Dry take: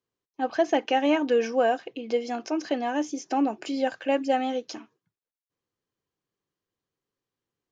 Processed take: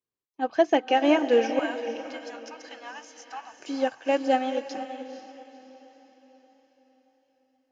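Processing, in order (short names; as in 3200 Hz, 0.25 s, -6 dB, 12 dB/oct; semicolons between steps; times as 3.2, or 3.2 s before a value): 1.59–3.6 inverse Chebyshev band-stop 200–440 Hz, stop band 60 dB; diffused feedback echo 0.491 s, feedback 48%, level -7 dB; upward expander 1.5:1, over -39 dBFS; gain +3 dB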